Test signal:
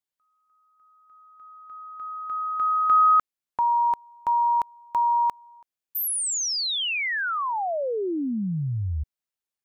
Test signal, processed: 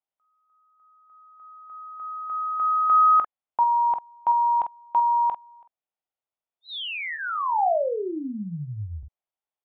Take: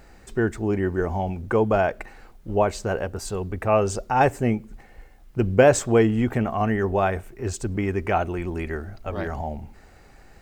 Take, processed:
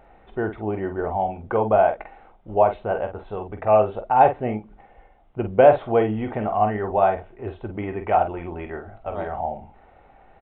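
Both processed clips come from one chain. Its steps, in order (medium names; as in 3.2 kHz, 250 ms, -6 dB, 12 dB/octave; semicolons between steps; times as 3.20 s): resampled via 8 kHz; peaking EQ 740 Hz +12.5 dB 1.3 oct; band-stop 1.7 kHz, Q 14; on a send: early reflections 19 ms -14 dB, 47 ms -8 dB; on the sum: trim -7 dB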